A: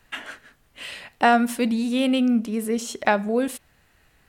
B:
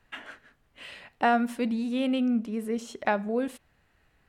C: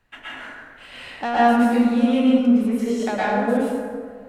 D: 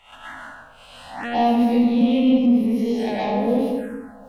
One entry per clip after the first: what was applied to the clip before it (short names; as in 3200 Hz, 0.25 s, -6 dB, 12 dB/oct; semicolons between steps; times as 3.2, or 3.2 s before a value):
high shelf 4600 Hz -10.5 dB; gain -5.5 dB
soft clip -17.5 dBFS, distortion -18 dB; plate-style reverb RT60 1.9 s, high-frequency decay 0.45×, pre-delay 0.1 s, DRR -9.5 dB; gain -1 dB
spectral swells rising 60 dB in 0.48 s; in parallel at -6 dB: soft clip -20.5 dBFS, distortion -8 dB; on the sum: envelope phaser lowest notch 270 Hz, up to 1500 Hz, full sweep at -15.5 dBFS; gain -2 dB